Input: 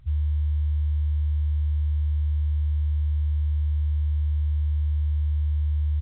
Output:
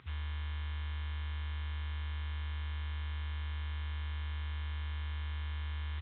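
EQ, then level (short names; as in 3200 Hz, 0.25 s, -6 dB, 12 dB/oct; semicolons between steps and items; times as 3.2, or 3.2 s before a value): HPF 430 Hz 12 dB/oct; air absorption 300 m; bell 640 Hz -13 dB 0.92 oct; +16.0 dB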